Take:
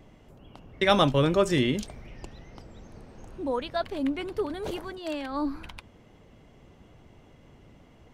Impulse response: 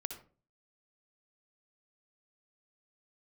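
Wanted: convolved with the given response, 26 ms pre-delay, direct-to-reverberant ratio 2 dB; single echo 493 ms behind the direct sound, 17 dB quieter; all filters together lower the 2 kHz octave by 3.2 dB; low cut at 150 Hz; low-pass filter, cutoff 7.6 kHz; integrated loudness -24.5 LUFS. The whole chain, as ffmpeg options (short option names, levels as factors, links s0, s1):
-filter_complex "[0:a]highpass=150,lowpass=7600,equalizer=f=2000:t=o:g=-4,aecho=1:1:493:0.141,asplit=2[s0][s1];[1:a]atrim=start_sample=2205,adelay=26[s2];[s1][s2]afir=irnorm=-1:irlink=0,volume=0.891[s3];[s0][s3]amix=inputs=2:normalize=0,volume=1.26"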